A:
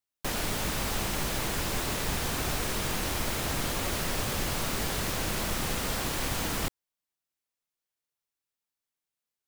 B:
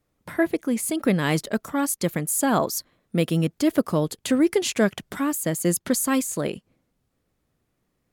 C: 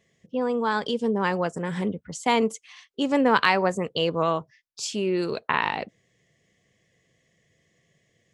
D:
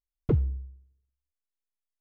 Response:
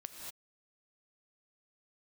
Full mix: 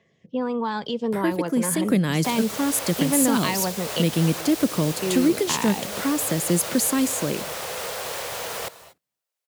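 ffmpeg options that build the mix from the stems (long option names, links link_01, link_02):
-filter_complex "[0:a]lowshelf=frequency=370:width_type=q:width=3:gain=-9.5,alimiter=limit=-22.5dB:level=0:latency=1:release=421,adelay=2000,volume=1dB,asplit=2[link_01][link_02];[link_02]volume=-6.5dB[link_03];[1:a]adelay=850,volume=1.5dB,asplit=2[link_04][link_05];[link_05]volume=-14.5dB[link_06];[2:a]lowpass=4600,equalizer=frequency=940:width_type=o:width=0.77:gain=4.5,aphaser=in_gain=1:out_gain=1:delay=2.2:decay=0.28:speed=0.35:type=triangular,volume=1.5dB,asplit=3[link_07][link_08][link_09];[link_07]atrim=end=4.02,asetpts=PTS-STARTPTS,afade=type=out:start_time=4.016:duration=0.004:curve=hsin[link_10];[link_08]atrim=start=4.02:end=5.02,asetpts=PTS-STARTPTS,volume=0[link_11];[link_09]atrim=start=5.02,asetpts=PTS-STARTPTS,afade=type=in:duration=0.004:curve=hsin[link_12];[link_10][link_11][link_12]concat=n=3:v=0:a=1[link_13];[4:a]atrim=start_sample=2205[link_14];[link_03][link_06]amix=inputs=2:normalize=0[link_15];[link_15][link_14]afir=irnorm=-1:irlink=0[link_16];[link_01][link_04][link_13][link_16]amix=inputs=4:normalize=0,acrossover=split=340|3000[link_17][link_18][link_19];[link_18]acompressor=threshold=-27dB:ratio=6[link_20];[link_17][link_20][link_19]amix=inputs=3:normalize=0,highpass=94"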